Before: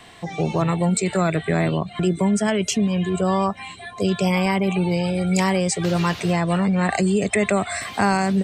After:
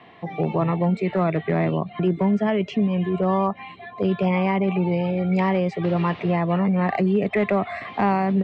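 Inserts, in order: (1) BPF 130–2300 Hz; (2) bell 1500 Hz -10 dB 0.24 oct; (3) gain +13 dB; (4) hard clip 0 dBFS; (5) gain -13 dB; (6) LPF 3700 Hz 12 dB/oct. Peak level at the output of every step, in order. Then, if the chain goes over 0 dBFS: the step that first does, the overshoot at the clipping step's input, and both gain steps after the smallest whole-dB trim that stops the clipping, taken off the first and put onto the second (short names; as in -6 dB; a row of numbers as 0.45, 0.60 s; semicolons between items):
-6.5, -8.5, +4.5, 0.0, -13.0, -12.5 dBFS; step 3, 4.5 dB; step 3 +8 dB, step 5 -8 dB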